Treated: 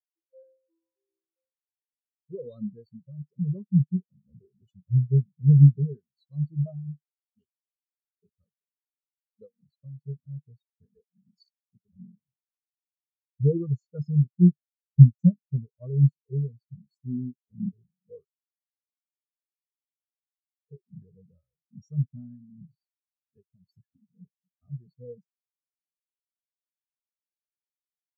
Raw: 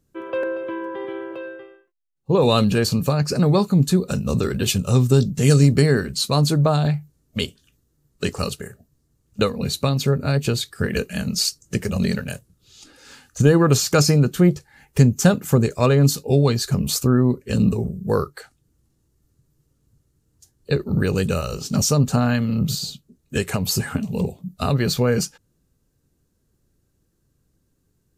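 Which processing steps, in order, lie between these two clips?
treble shelf 7.7 kHz +8 dB; spectral contrast expander 4:1

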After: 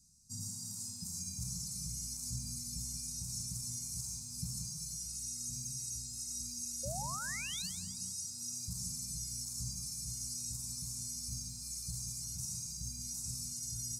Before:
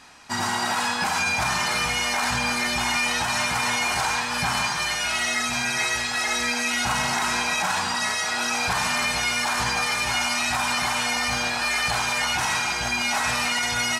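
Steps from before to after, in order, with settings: inverse Chebyshev band-stop 340–3300 Hz, stop band 40 dB; painted sound rise, 6.83–7.70 s, 520–4900 Hz -36 dBFS; bit-crushed delay 181 ms, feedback 35%, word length 9-bit, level -12.5 dB; trim -7.5 dB

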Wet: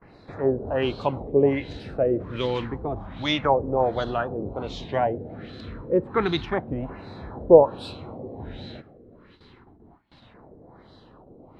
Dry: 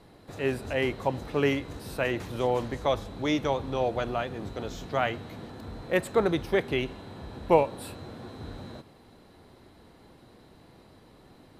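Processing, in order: LFO notch saw down 0.29 Hz 370–3600 Hz; gate with hold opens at -46 dBFS; LFO low-pass sine 1.3 Hz 470–4200 Hz; warped record 33 1/3 rpm, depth 100 cents; trim +3 dB

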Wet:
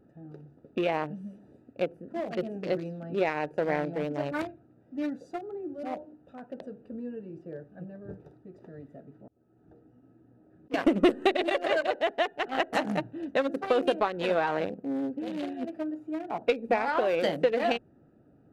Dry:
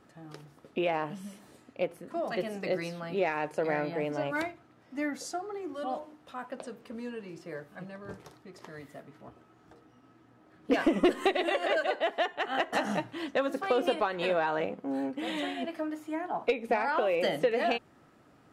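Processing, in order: local Wiener filter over 41 samples; 8.80–10.74 s: slow attack 412 ms; trim +3 dB

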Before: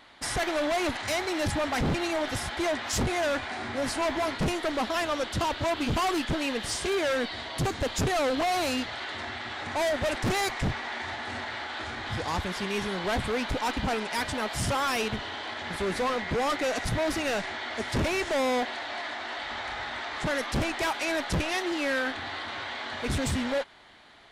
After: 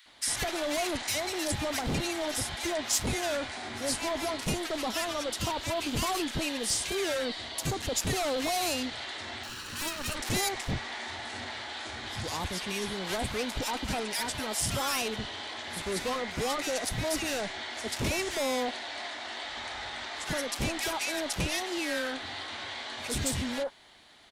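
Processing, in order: 9.43–10.15 s: comb filter that takes the minimum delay 0.7 ms; treble shelf 4.7 kHz +12 dB; bands offset in time highs, lows 60 ms, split 1.4 kHz; trim -4 dB

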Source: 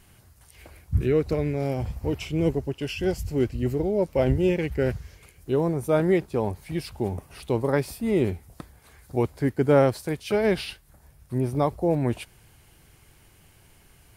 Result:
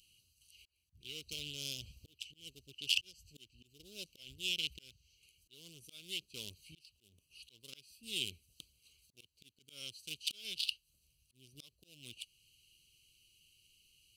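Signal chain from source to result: local Wiener filter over 25 samples; slow attack 650 ms; elliptic high-pass 2.9 kHz, stop band 40 dB; trim +16 dB

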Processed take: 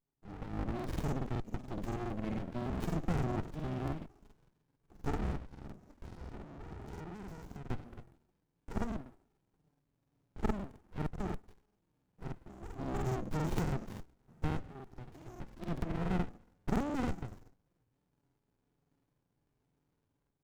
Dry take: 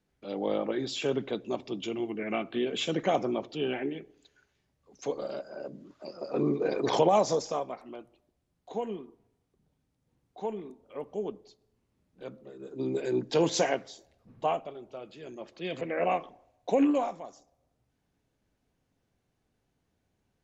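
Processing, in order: valve stage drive 15 dB, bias 0.45; peak limiter -25.5 dBFS, peak gain reduction 11 dB; tilt shelf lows -7 dB, about 1.5 kHz; level rider gain up to 11.5 dB; FFT filter 300 Hz 0 dB, 870 Hz +7 dB, 3.2 kHz -20 dB, 6.6 kHz +2 dB; touch-sensitive flanger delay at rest 7.2 ms, full sweep at -24 dBFS; 5.36–7.65 s: compression 4:1, threshold -39 dBFS, peak gain reduction 15 dB; crackling interface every 0.14 s, samples 2048, repeat, from 0.75 s; sliding maximum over 65 samples; trim -2.5 dB

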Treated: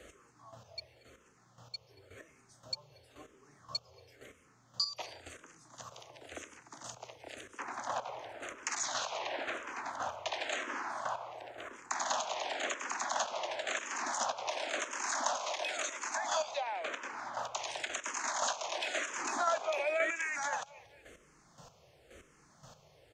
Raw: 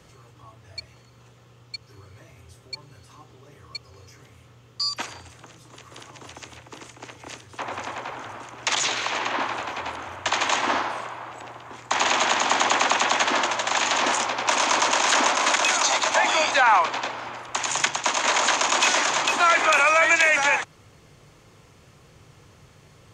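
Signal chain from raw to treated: fifteen-band graphic EQ 100 Hz -8 dB, 630 Hz +8 dB, 1.6 kHz +3 dB, 6.3 kHz +5 dB; feedback delay 232 ms, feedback 26%, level -21.5 dB; square tremolo 1.9 Hz, depth 65%, duty 20%; compression 4:1, threshold -31 dBFS, peak gain reduction 16.5 dB; 19.19–20.10 s: peaking EQ 340 Hz +7.5 dB 1.7 oct; barber-pole phaser -0.95 Hz

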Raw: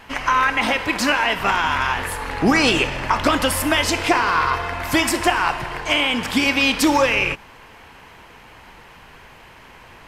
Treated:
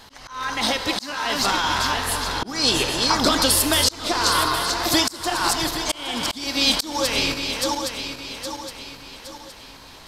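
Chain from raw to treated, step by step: backward echo that repeats 408 ms, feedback 64%, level -7 dB; resonant high shelf 3.2 kHz +7.5 dB, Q 3; slow attack 380 ms; trim -2.5 dB

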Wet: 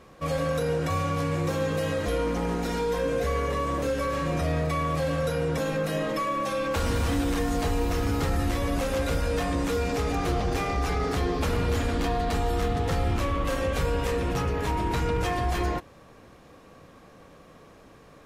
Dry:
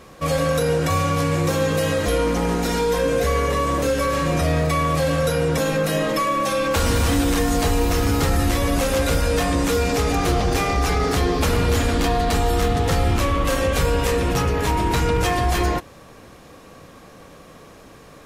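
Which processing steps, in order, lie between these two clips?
treble shelf 4.2 kHz -6.5 dB; trim -6.5 dB

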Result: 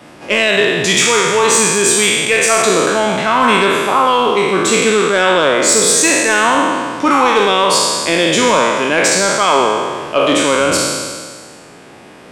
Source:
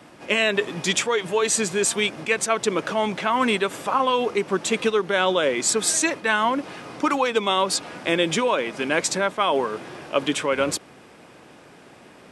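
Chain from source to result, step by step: spectral sustain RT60 1.73 s; saturation -6.5 dBFS, distortion -23 dB; trim +6 dB

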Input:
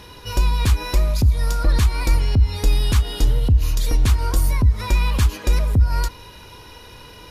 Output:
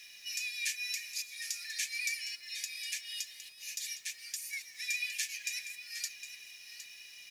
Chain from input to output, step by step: speakerphone echo 180 ms, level -27 dB; 2.55–4.53 s: compression 12:1, threshold -17 dBFS, peak gain reduction 8 dB; rippled Chebyshev high-pass 1.7 kHz, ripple 9 dB; flange 0.67 Hz, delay 5.2 ms, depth 2.8 ms, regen -27%; bit crusher 11-bit; on a send: delay 761 ms -11.5 dB; on the sum: trim +3 dB

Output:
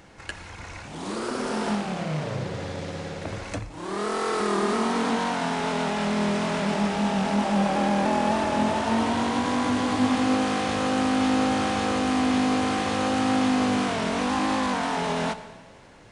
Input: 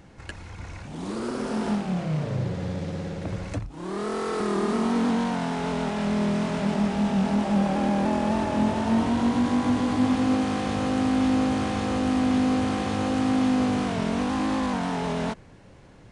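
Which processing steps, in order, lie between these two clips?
bass shelf 380 Hz -9.5 dB; hum notches 60/120/180/240 Hz; reverberation RT60 1.6 s, pre-delay 6 ms, DRR 12 dB; trim +5 dB

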